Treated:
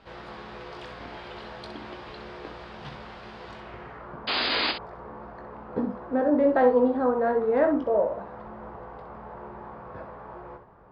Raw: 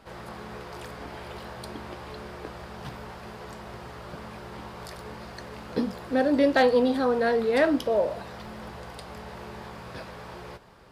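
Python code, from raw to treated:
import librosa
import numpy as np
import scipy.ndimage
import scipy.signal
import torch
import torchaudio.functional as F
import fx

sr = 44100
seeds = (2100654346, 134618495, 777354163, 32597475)

y = fx.filter_sweep_lowpass(x, sr, from_hz=3800.0, to_hz=1100.0, start_s=3.49, end_s=4.22, q=1.3)
y = fx.spec_paint(y, sr, seeds[0], shape='noise', start_s=4.27, length_s=0.45, low_hz=230.0, high_hz=5000.0, level_db=-25.0)
y = fx.room_early_taps(y, sr, ms=(20, 64), db=(-8.5, -8.5))
y = F.gain(torch.from_numpy(y), -2.0).numpy()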